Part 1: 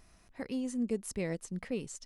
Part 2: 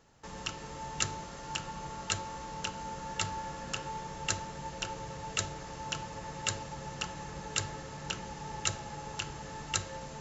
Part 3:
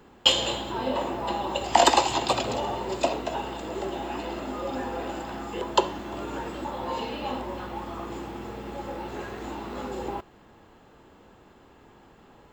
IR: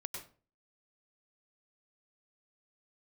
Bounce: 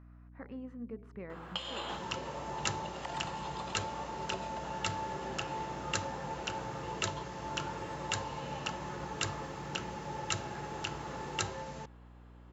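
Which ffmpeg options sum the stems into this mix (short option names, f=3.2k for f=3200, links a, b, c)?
-filter_complex "[0:a]lowpass=1.9k,bandreject=f=82.86:t=h:w=4,bandreject=f=165.72:t=h:w=4,bandreject=f=248.58:t=h:w=4,bandreject=f=331.44:t=h:w=4,bandreject=f=414.3:t=h:w=4,bandreject=f=497.16:t=h:w=4,bandreject=f=580.02:t=h:w=4,bandreject=f=662.88:t=h:w=4,bandreject=f=745.74:t=h:w=4,bandreject=f=828.6:t=h:w=4,bandreject=f=911.46:t=h:w=4,bandreject=f=994.32:t=h:w=4,volume=-8.5dB,asplit=3[a][b][c];[b]volume=-12dB[d];[1:a]adelay=1650,volume=0.5dB[e];[2:a]acrossover=split=9400[f][g];[g]acompressor=threshold=-58dB:ratio=4:attack=1:release=60[h];[f][h]amix=inputs=2:normalize=0,highpass=f=520:p=1,acompressor=threshold=-34dB:ratio=5,adelay=1300,volume=2.5dB,asplit=2[i][j];[j]volume=-8.5dB[k];[c]apad=whole_len=609897[l];[i][l]sidechaingate=range=-33dB:threshold=-59dB:ratio=16:detection=peak[m];[a][m]amix=inputs=2:normalize=0,equalizer=f=1.3k:w=1.3:g=12,acompressor=threshold=-42dB:ratio=3,volume=0dB[n];[3:a]atrim=start_sample=2205[o];[d][k]amix=inputs=2:normalize=0[p];[p][o]afir=irnorm=-1:irlink=0[q];[e][n][q]amix=inputs=3:normalize=0,highpass=85,highshelf=f=6.4k:g=-11,aeval=exprs='val(0)+0.00224*(sin(2*PI*60*n/s)+sin(2*PI*2*60*n/s)/2+sin(2*PI*3*60*n/s)/3+sin(2*PI*4*60*n/s)/4+sin(2*PI*5*60*n/s)/5)':c=same"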